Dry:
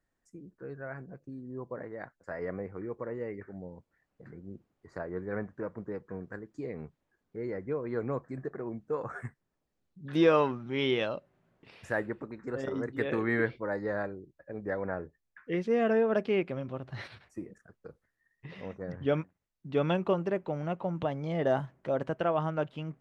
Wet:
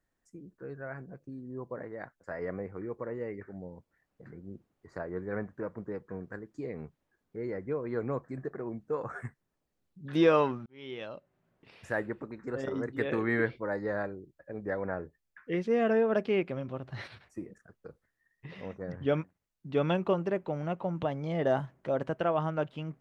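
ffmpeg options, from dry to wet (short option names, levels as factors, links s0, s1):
-filter_complex "[0:a]asplit=2[s0][s1];[s0]atrim=end=10.66,asetpts=PTS-STARTPTS,afade=t=out:st=10.656:d=0.004:c=hsin[s2];[s1]atrim=start=10.66,asetpts=PTS-STARTPTS,afade=t=in:d=1.76:c=qsin[s3];[s2][s3]concat=n=2:v=0:a=1"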